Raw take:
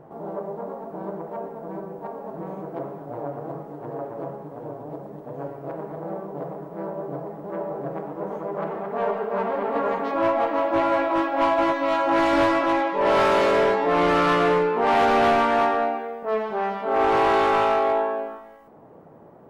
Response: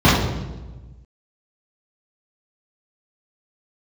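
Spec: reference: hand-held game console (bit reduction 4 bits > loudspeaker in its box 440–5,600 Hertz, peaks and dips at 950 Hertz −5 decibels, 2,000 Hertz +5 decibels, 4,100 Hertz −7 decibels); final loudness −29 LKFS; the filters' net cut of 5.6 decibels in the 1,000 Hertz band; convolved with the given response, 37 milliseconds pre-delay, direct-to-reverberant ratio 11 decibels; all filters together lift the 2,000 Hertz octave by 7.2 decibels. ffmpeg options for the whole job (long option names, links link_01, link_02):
-filter_complex "[0:a]equalizer=frequency=1000:width_type=o:gain=-7,equalizer=frequency=2000:width_type=o:gain=8,asplit=2[link_01][link_02];[1:a]atrim=start_sample=2205,adelay=37[link_03];[link_02][link_03]afir=irnorm=-1:irlink=0,volume=-37.5dB[link_04];[link_01][link_04]amix=inputs=2:normalize=0,acrusher=bits=3:mix=0:aa=0.000001,highpass=440,equalizer=frequency=950:width_type=q:width=4:gain=-5,equalizer=frequency=2000:width_type=q:width=4:gain=5,equalizer=frequency=4100:width_type=q:width=4:gain=-7,lowpass=frequency=5600:width=0.5412,lowpass=frequency=5600:width=1.3066,volume=-7.5dB"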